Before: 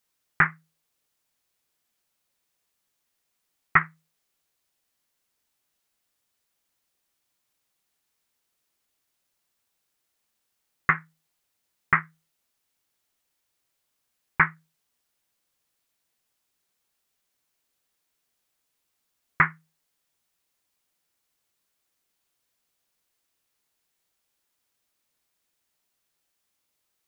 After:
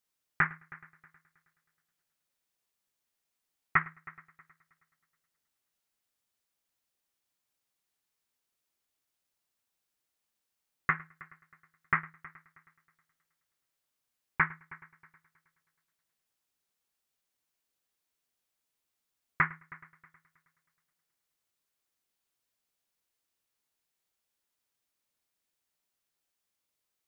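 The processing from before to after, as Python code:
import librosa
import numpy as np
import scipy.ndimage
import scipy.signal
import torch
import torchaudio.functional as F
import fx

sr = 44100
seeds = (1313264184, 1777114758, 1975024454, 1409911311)

y = fx.echo_heads(x, sr, ms=106, heads='first and third', feedback_pct=43, wet_db=-21.5)
y = y * 10.0 ** (-7.0 / 20.0)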